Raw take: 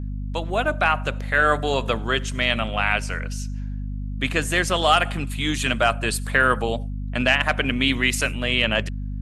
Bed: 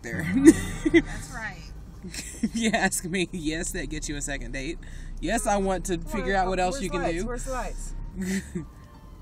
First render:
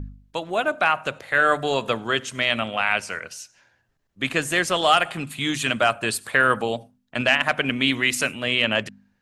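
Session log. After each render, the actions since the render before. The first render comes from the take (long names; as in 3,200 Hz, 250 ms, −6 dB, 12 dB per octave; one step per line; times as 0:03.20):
hum removal 50 Hz, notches 5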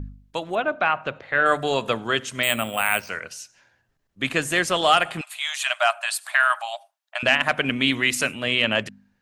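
0:00.55–0:01.46: high-frequency loss of the air 210 metres
0:02.43–0:03.09: bad sample-rate conversion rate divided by 4×, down filtered, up hold
0:05.21–0:07.23: linear-phase brick-wall high-pass 590 Hz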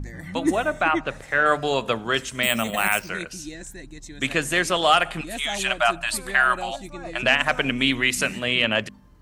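mix in bed −8.5 dB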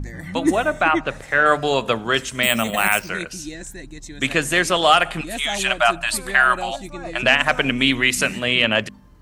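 level +3.5 dB
brickwall limiter −2 dBFS, peak gain reduction 1 dB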